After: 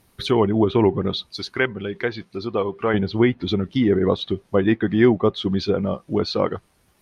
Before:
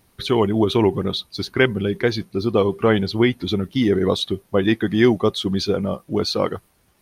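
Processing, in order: low-pass that closes with the level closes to 2.2 kHz, closed at -15.5 dBFS; 1.33–2.94 s: bass shelf 480 Hz -9.5 dB

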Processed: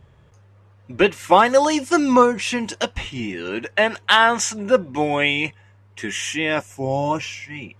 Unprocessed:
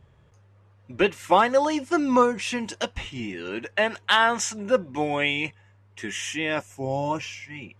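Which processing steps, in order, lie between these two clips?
1.45–2.12 s: treble shelf 5.3 kHz -> 3.6 kHz +9 dB; trim +5 dB

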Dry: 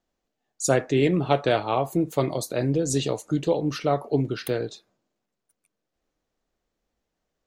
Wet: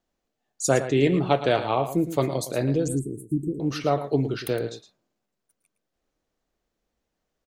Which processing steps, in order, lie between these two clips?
2.88–3.60 s: Chebyshev band-stop 380–8400 Hz, order 5; on a send: delay 112 ms -11.5 dB

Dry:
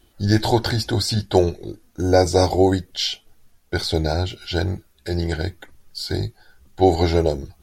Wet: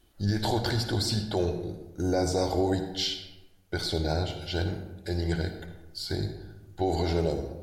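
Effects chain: peak limiter -10.5 dBFS, peak gain reduction 8 dB; on a send: reverberation RT60 1.1 s, pre-delay 49 ms, DRR 7 dB; on the sum: trim -6.5 dB

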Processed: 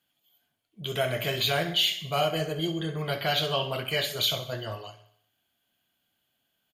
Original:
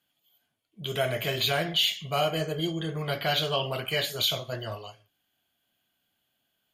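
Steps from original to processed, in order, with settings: feedback delay 64 ms, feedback 56%, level -14 dB

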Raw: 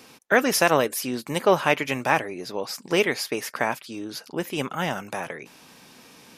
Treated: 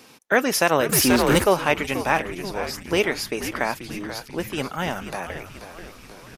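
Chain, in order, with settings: on a send: frequency-shifting echo 484 ms, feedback 59%, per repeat -100 Hz, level -11 dB; 0.89–1.44 s: on the sum: waveshaping leveller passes 3

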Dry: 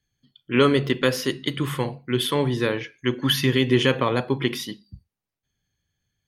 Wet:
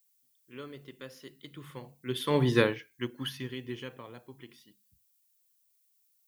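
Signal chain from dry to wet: Doppler pass-by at 2.55 s, 7 m/s, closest 1.4 m; added noise violet -64 dBFS; upward expansion 1.5:1, over -36 dBFS; trim +1 dB

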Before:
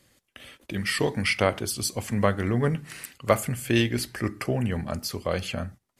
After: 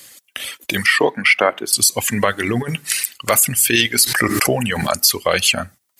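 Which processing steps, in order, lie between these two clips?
tilt EQ +3.5 dB/octave; reverb removal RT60 1.7 s; 0.86–1.73 s: three-band isolator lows -21 dB, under 170 Hz, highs -21 dB, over 2.6 kHz; 2.49–3.03 s: compressor with a negative ratio -33 dBFS, ratio -0.5; loudness maximiser +15 dB; 4.03–5.02 s: swell ahead of each attack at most 34 dB/s; trim -1 dB

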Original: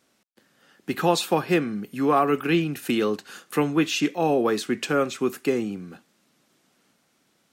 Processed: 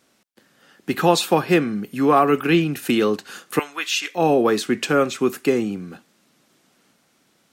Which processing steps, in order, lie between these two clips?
3.59–4.15 s: high-pass 1.2 kHz 12 dB/octave; trim +4.5 dB

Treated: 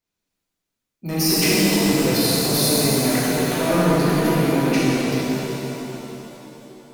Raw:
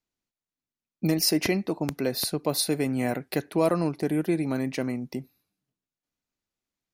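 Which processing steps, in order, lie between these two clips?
transient shaper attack -10 dB, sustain +11 dB; saturation -17.5 dBFS, distortion -16 dB; pitch-shifted reverb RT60 3.4 s, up +7 st, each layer -8 dB, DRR -9 dB

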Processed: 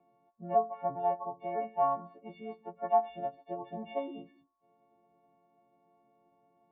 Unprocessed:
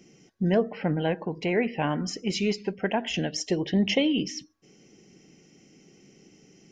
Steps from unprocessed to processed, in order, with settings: partials quantised in pitch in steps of 4 st; cascade formant filter a; trim +7.5 dB

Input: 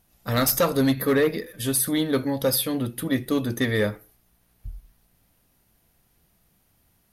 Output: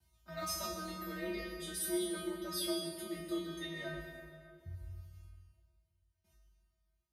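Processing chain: hum notches 50/100/150/200/250/300/350/400 Hz; gate with hold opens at -53 dBFS; low-pass 9.1 kHz 12 dB/octave; resonant low shelf 180 Hz +6.5 dB, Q 3; band-stop 1.7 kHz, Q 14; reverse; compression 10:1, threshold -29 dBFS, peak gain reduction 15.5 dB; reverse; feedback comb 300 Hz, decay 0.47 s, harmonics all, mix 100%; frequency shift +49 Hz; on a send: reverberation RT60 2.1 s, pre-delay 97 ms, DRR 5 dB; on the sum: trim +12 dB

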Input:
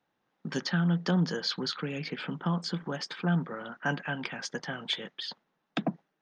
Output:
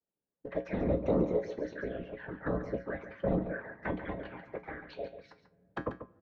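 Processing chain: formant shift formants +4 st; level-controlled noise filter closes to 420 Hz, open at -26.5 dBFS; peaking EQ 2.9 kHz +7.5 dB 2.5 oct; waveshaping leveller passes 1; touch-sensitive flanger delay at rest 4.7 ms, full sweep at -22.5 dBFS; low-pass that closes with the level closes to 1.2 kHz, closed at -33 dBFS; small resonant body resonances 510/1600 Hz, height 13 dB, ringing for 35 ms; whisper effect; feedback comb 61 Hz, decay 0.24 s, harmonics odd, mix 70%; delay 140 ms -10.5 dB; on a send at -24 dB: reverberation RT60 3.5 s, pre-delay 3 ms; on the sum: trim -2 dB

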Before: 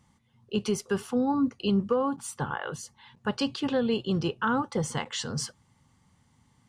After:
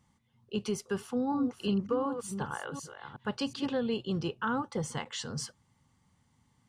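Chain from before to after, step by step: 0.95–3.66 s: chunks repeated in reverse 369 ms, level -8.5 dB; trim -5 dB

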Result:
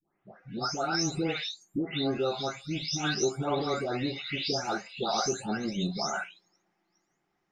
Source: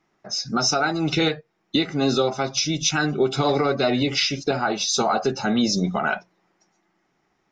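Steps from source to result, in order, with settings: delay that grows with frequency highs late, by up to 482 ms; trim -7.5 dB

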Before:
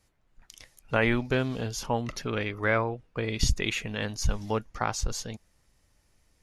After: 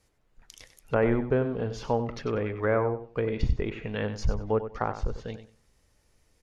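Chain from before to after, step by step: low-pass that closes with the level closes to 1.2 kHz, closed at -25.5 dBFS; peaking EQ 450 Hz +5.5 dB 0.48 oct; feedback delay 95 ms, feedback 21%, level -11 dB

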